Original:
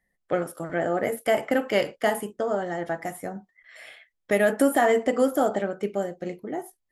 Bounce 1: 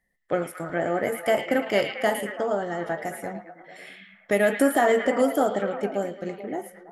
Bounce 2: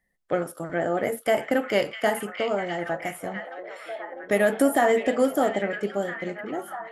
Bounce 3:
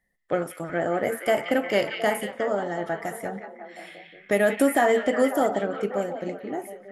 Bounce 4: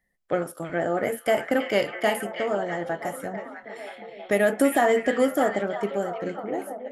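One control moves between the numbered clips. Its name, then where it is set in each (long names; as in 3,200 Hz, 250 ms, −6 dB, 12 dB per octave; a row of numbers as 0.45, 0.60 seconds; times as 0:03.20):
echo through a band-pass that steps, delay time: 110, 652, 179, 324 milliseconds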